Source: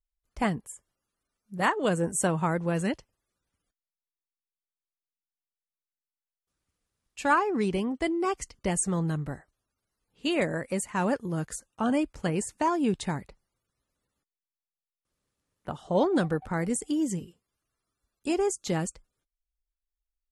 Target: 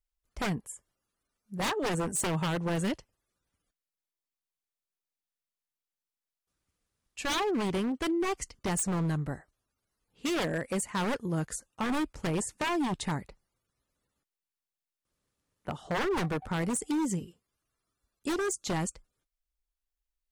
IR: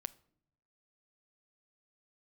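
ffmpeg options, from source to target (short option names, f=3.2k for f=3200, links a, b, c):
-af "aeval=exprs='0.0596*(abs(mod(val(0)/0.0596+3,4)-2)-1)':c=same"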